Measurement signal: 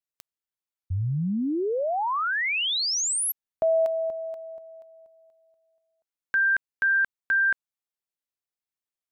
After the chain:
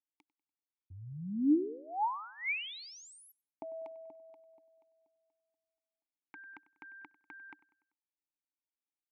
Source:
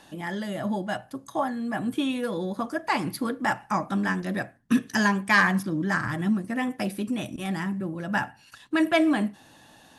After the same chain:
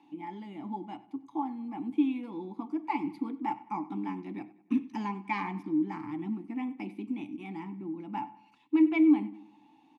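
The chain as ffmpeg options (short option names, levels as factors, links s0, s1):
-filter_complex "[0:a]asplit=3[s0][s1][s2];[s0]bandpass=f=300:t=q:w=8,volume=1[s3];[s1]bandpass=f=870:t=q:w=8,volume=0.501[s4];[s2]bandpass=f=2240:t=q:w=8,volume=0.355[s5];[s3][s4][s5]amix=inputs=3:normalize=0,asplit=2[s6][s7];[s7]adelay=97,lowpass=f=4500:p=1,volume=0.119,asplit=2[s8][s9];[s9]adelay=97,lowpass=f=4500:p=1,volume=0.5,asplit=2[s10][s11];[s11]adelay=97,lowpass=f=4500:p=1,volume=0.5,asplit=2[s12][s13];[s13]adelay=97,lowpass=f=4500:p=1,volume=0.5[s14];[s6][s8][s10][s12][s14]amix=inputs=5:normalize=0,volume=1.5"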